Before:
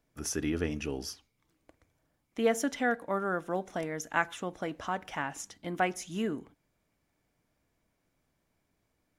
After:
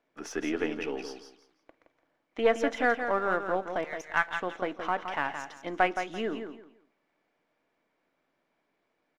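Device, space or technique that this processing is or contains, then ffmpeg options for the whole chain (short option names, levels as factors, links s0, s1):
crystal radio: -filter_complex "[0:a]asettb=1/sr,asplit=3[s0][s1][s2];[s0]atrim=end=3.844[s3];[s1]atrim=start=3.84:end=4.28,asetpts=PTS-STARTPTS,afade=t=in:d=0.004:c=qsin,afade=t=out:st=0.436:d=0.004:c=qsin,highpass=1000[s4];[s2]atrim=start=4.276[s5];[s3][s4]acrossfade=d=0.004:c1=hsin:c2=qsin[s6];[s6][s5]acrossfade=d=0.004:c1=qsin:c2=hsin,highpass=340,lowpass=3100,aeval=exprs='if(lt(val(0),0),0.708*val(0),val(0))':c=same,aecho=1:1:169|338|507:0.398|0.0916|0.0211,volume=1.88"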